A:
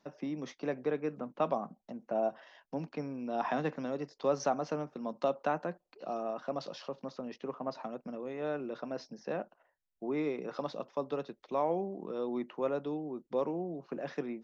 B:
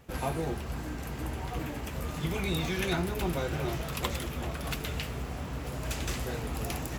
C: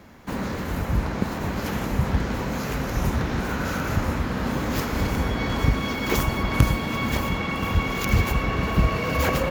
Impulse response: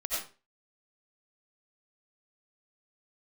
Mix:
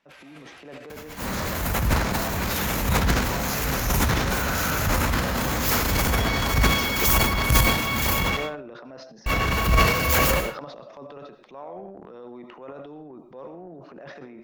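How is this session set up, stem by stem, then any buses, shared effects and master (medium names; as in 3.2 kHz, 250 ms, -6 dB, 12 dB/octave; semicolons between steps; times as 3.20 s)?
-0.5 dB, 0.00 s, bus A, send -19.5 dB, treble shelf 3.2 kHz -10 dB
-4.0 dB, 0.00 s, bus A, send -12 dB, band-pass filter 2.5 kHz, Q 1.1; rotary cabinet horn 5 Hz
-2.0 dB, 0.90 s, muted 8.37–9.26 s, no bus, send -18.5 dB, treble shelf 6.1 kHz +12 dB
bus A: 0.0 dB, compression 6:1, threshold -39 dBFS, peak gain reduction 13.5 dB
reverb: on, RT60 0.35 s, pre-delay 50 ms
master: peaking EQ 270 Hz -6 dB 2.3 oct; transient shaper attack -6 dB, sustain +10 dB; level rider gain up to 4 dB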